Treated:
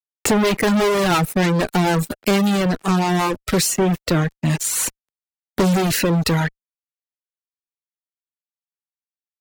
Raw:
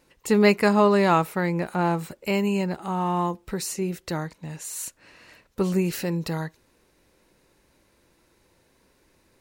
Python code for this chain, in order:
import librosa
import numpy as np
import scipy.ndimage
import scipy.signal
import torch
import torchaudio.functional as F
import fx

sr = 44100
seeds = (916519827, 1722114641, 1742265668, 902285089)

y = fx.rotary_switch(x, sr, hz=6.7, then_hz=0.75, switch_at_s=1.7)
y = fx.dynamic_eq(y, sr, hz=1100.0, q=2.0, threshold_db=-42.0, ratio=4.0, max_db=-3)
y = fx.fuzz(y, sr, gain_db=35.0, gate_db=-42.0)
y = fx.dereverb_blind(y, sr, rt60_s=1.2)
y = fx.band_squash(y, sr, depth_pct=40)